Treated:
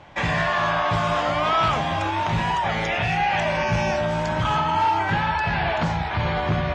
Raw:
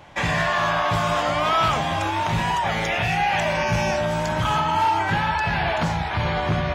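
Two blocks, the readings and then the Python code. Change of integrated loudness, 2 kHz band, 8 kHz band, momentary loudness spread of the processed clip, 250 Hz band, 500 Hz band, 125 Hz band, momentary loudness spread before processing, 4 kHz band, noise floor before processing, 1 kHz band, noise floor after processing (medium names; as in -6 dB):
-0.5 dB, -0.5 dB, -5.5 dB, 3 LU, 0.0 dB, 0.0 dB, 0.0 dB, 3 LU, -1.5 dB, -26 dBFS, -0.5 dB, -26 dBFS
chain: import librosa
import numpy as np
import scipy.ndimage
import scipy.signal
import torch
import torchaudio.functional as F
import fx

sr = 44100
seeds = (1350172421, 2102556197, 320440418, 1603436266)

y = fx.air_absorb(x, sr, metres=73.0)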